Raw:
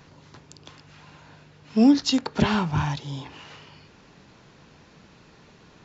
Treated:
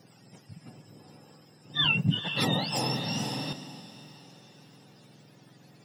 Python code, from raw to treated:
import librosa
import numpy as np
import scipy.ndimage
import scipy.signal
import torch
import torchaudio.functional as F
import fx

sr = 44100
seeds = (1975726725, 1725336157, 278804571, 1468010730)

y = fx.octave_mirror(x, sr, pivot_hz=880.0)
y = fx.echo_diffused(y, sr, ms=458, feedback_pct=47, wet_db=-10.5)
y = fx.band_squash(y, sr, depth_pct=70, at=(1.84, 3.53))
y = y * librosa.db_to_amplitude(-3.5)